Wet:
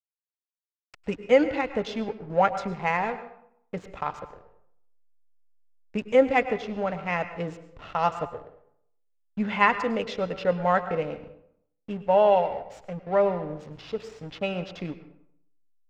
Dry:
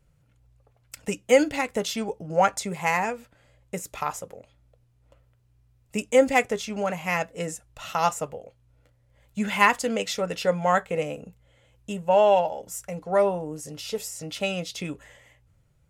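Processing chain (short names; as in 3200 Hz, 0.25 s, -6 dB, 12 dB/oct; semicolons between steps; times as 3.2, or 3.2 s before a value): backlash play -33 dBFS; air absorption 220 m; reverb RT60 0.70 s, pre-delay 97 ms, DRR 11.5 dB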